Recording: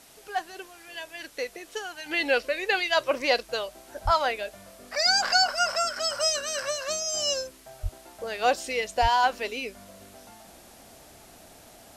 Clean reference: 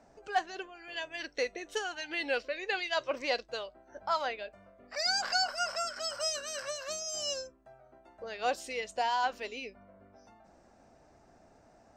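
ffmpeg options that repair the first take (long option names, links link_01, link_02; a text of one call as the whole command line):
ffmpeg -i in.wav -filter_complex "[0:a]asplit=3[link_01][link_02][link_03];[link_01]afade=type=out:start_time=4.04:duration=0.02[link_04];[link_02]highpass=frequency=140:width=0.5412,highpass=frequency=140:width=1.3066,afade=type=in:start_time=4.04:duration=0.02,afade=type=out:start_time=4.16:duration=0.02[link_05];[link_03]afade=type=in:start_time=4.16:duration=0.02[link_06];[link_04][link_05][link_06]amix=inputs=3:normalize=0,asplit=3[link_07][link_08][link_09];[link_07]afade=type=out:start_time=7.82:duration=0.02[link_10];[link_08]highpass=frequency=140:width=0.5412,highpass=frequency=140:width=1.3066,afade=type=in:start_time=7.82:duration=0.02,afade=type=out:start_time=7.94:duration=0.02[link_11];[link_09]afade=type=in:start_time=7.94:duration=0.02[link_12];[link_10][link_11][link_12]amix=inputs=3:normalize=0,asplit=3[link_13][link_14][link_15];[link_13]afade=type=out:start_time=9.01:duration=0.02[link_16];[link_14]highpass=frequency=140:width=0.5412,highpass=frequency=140:width=1.3066,afade=type=in:start_time=9.01:duration=0.02,afade=type=out:start_time=9.13:duration=0.02[link_17];[link_15]afade=type=in:start_time=9.13:duration=0.02[link_18];[link_16][link_17][link_18]amix=inputs=3:normalize=0,afwtdn=0.0025,asetnsamples=nb_out_samples=441:pad=0,asendcmd='2.06 volume volume -8dB',volume=0dB" out.wav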